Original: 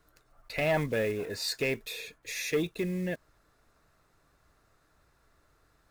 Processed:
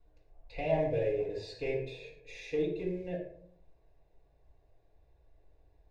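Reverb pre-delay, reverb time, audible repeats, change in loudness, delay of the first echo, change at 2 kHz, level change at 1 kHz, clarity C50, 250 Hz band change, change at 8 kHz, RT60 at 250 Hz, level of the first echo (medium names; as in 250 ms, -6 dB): 4 ms, 0.55 s, no echo, -2.5 dB, no echo, -11.0 dB, -3.0 dB, 5.5 dB, -4.5 dB, under -20 dB, 0.70 s, no echo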